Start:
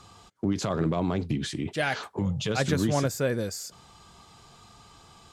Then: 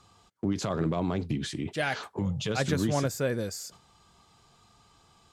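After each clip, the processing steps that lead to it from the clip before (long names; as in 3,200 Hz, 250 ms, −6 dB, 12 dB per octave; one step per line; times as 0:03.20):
noise gate −48 dBFS, range −6 dB
level −2 dB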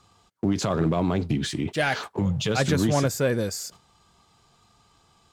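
leveller curve on the samples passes 1
level +2 dB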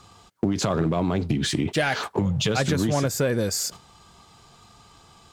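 downward compressor 5 to 1, threshold −29 dBFS, peak gain reduction 10.5 dB
level +8.5 dB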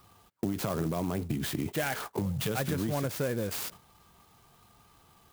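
converter with an unsteady clock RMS 0.048 ms
level −8 dB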